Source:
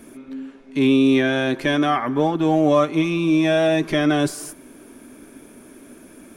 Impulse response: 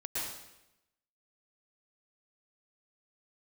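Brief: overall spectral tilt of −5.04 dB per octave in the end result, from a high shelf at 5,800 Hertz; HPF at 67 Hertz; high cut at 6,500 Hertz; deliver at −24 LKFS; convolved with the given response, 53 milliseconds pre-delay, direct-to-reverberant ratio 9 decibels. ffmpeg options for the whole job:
-filter_complex "[0:a]highpass=67,lowpass=6500,highshelf=frequency=5800:gain=-5,asplit=2[link_01][link_02];[1:a]atrim=start_sample=2205,adelay=53[link_03];[link_02][link_03]afir=irnorm=-1:irlink=0,volume=-13dB[link_04];[link_01][link_04]amix=inputs=2:normalize=0,volume=-5.5dB"

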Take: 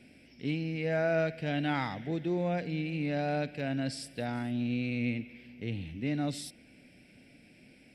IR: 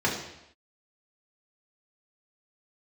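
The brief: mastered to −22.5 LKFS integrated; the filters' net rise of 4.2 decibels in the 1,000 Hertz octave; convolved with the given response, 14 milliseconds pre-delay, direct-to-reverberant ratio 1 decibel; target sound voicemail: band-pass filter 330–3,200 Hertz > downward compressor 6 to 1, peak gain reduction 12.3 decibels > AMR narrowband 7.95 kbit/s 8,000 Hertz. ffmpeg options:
-filter_complex "[0:a]equalizer=frequency=1000:width_type=o:gain=7,asplit=2[link_01][link_02];[1:a]atrim=start_sample=2205,adelay=14[link_03];[link_02][link_03]afir=irnorm=-1:irlink=0,volume=-14dB[link_04];[link_01][link_04]amix=inputs=2:normalize=0,highpass=330,lowpass=3200,acompressor=threshold=-31dB:ratio=6,volume=14.5dB" -ar 8000 -c:a libopencore_amrnb -b:a 7950

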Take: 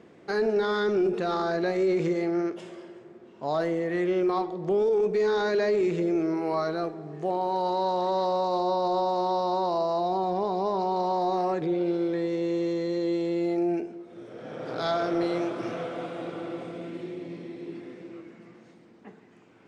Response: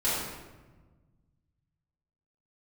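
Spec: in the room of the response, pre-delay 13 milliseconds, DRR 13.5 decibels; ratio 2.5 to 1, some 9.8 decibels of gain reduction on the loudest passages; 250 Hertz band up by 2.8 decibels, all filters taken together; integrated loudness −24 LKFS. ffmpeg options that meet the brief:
-filter_complex "[0:a]equalizer=frequency=250:width_type=o:gain=5,acompressor=threshold=-35dB:ratio=2.5,asplit=2[link_01][link_02];[1:a]atrim=start_sample=2205,adelay=13[link_03];[link_02][link_03]afir=irnorm=-1:irlink=0,volume=-24.5dB[link_04];[link_01][link_04]amix=inputs=2:normalize=0,volume=10.5dB"

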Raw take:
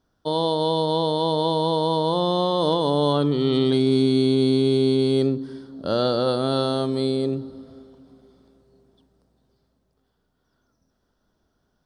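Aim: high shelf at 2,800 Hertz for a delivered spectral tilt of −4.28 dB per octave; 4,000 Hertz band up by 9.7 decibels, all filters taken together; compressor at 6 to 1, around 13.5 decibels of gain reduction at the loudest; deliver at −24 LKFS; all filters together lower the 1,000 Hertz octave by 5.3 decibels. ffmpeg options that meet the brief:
ffmpeg -i in.wav -af "equalizer=frequency=1000:width_type=o:gain=-7.5,highshelf=frequency=2800:gain=7.5,equalizer=frequency=4000:width_type=o:gain=6,acompressor=threshold=-30dB:ratio=6,volume=8dB" out.wav

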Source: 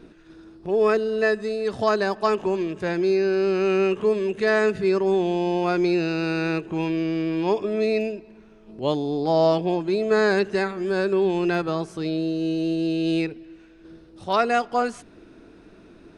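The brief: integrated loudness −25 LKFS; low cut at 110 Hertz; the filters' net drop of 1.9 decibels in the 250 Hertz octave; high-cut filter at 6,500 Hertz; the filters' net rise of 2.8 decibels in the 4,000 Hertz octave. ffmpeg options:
ffmpeg -i in.wav -af "highpass=110,lowpass=6500,equalizer=frequency=250:width_type=o:gain=-3,equalizer=frequency=4000:width_type=o:gain=4,volume=-1dB" out.wav

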